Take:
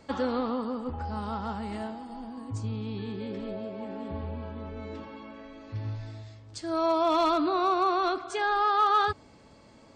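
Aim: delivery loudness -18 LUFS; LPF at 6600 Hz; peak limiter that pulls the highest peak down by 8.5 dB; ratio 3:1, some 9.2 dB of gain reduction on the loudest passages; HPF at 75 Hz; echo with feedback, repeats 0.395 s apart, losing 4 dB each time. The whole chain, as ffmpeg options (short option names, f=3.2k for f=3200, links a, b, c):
-af "highpass=75,lowpass=6.6k,acompressor=threshold=-33dB:ratio=3,alimiter=level_in=6.5dB:limit=-24dB:level=0:latency=1,volume=-6.5dB,aecho=1:1:395|790|1185|1580|1975|2370|2765|3160|3555:0.631|0.398|0.25|0.158|0.0994|0.0626|0.0394|0.0249|0.0157,volume=19.5dB"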